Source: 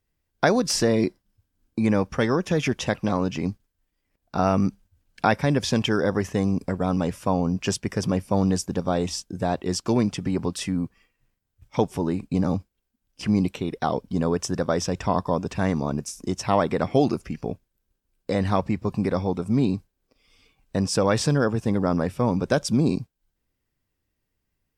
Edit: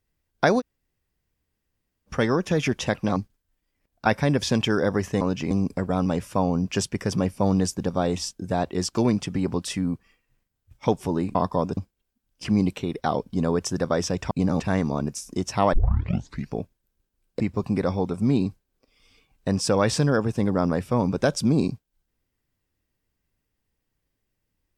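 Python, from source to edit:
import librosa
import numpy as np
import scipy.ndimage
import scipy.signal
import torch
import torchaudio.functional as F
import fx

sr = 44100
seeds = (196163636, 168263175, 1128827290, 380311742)

y = fx.edit(x, sr, fx.room_tone_fill(start_s=0.6, length_s=1.48, crossfade_s=0.04),
    fx.move(start_s=3.16, length_s=0.3, to_s=6.42),
    fx.cut(start_s=4.36, length_s=0.91),
    fx.swap(start_s=12.26, length_s=0.29, other_s=15.09, other_length_s=0.42),
    fx.tape_start(start_s=16.64, length_s=0.77),
    fx.cut(start_s=18.31, length_s=0.37), tone=tone)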